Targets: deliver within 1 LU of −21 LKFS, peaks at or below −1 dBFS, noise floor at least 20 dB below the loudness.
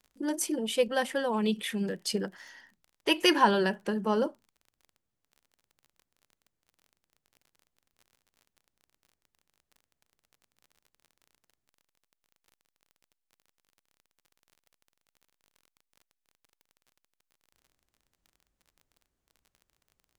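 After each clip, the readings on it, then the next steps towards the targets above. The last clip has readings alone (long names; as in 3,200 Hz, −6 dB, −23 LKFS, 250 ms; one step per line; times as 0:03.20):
crackle rate 32 per second; integrated loudness −28.5 LKFS; sample peak −10.0 dBFS; target loudness −21.0 LKFS
→ click removal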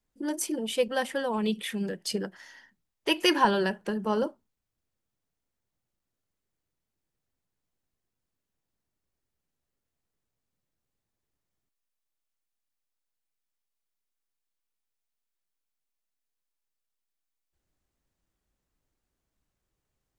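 crackle rate 0 per second; integrated loudness −28.5 LKFS; sample peak −10.0 dBFS; target loudness −21.0 LKFS
→ level +7.5 dB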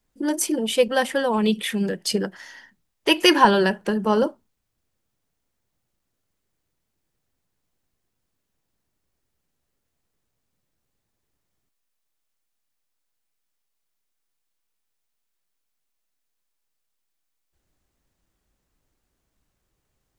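integrated loudness −21.0 LKFS; sample peak −2.5 dBFS; background noise floor −78 dBFS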